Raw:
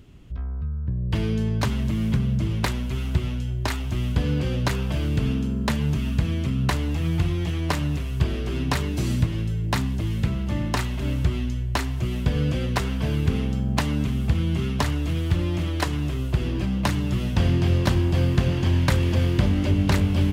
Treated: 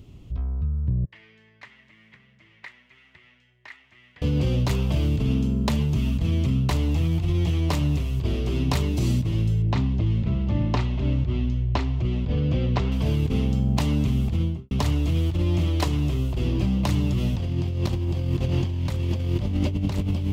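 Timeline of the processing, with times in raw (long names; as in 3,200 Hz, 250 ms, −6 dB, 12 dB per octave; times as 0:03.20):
0:01.05–0:04.22: resonant band-pass 1,900 Hz, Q 7.1
0:09.62–0:12.92: high-frequency loss of the air 170 metres
0:14.31–0:14.71: fade out and dull
whole clip: graphic EQ with 15 bands 100 Hz +4 dB, 1,600 Hz −10 dB, 10,000 Hz −4 dB; compressor whose output falls as the input rises −22 dBFS, ratio −1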